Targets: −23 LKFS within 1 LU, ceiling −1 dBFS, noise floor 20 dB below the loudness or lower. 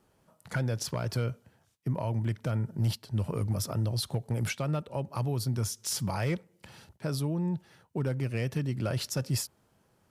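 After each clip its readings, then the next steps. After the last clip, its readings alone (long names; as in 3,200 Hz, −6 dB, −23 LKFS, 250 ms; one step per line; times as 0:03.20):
share of clipped samples 0.2%; peaks flattened at −21.0 dBFS; integrated loudness −32.5 LKFS; sample peak −21.0 dBFS; target loudness −23.0 LKFS
→ clipped peaks rebuilt −21 dBFS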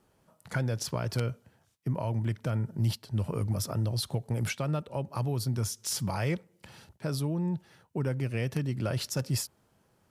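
share of clipped samples 0.0%; integrated loudness −32.0 LKFS; sample peak −12.0 dBFS; target loudness −23.0 LKFS
→ level +9 dB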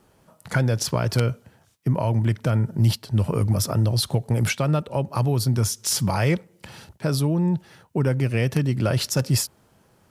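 integrated loudness −23.0 LKFS; sample peak −3.0 dBFS; background noise floor −60 dBFS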